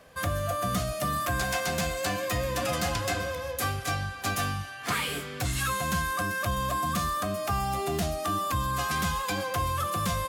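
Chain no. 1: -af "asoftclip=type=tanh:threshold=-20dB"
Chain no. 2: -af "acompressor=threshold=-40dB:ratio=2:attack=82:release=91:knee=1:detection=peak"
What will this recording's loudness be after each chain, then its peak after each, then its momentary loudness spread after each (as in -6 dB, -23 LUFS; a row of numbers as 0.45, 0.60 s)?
-30.0, -34.0 LUFS; -20.5, -19.5 dBFS; 3, 2 LU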